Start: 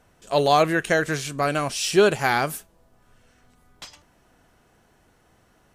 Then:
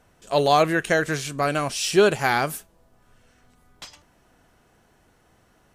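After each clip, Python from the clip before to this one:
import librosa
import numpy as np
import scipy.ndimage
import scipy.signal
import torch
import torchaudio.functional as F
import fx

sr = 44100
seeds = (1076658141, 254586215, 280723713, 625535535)

y = x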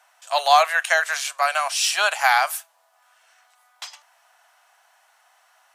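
y = scipy.signal.sosfilt(scipy.signal.butter(8, 680.0, 'highpass', fs=sr, output='sos'), x)
y = F.gain(torch.from_numpy(y), 5.0).numpy()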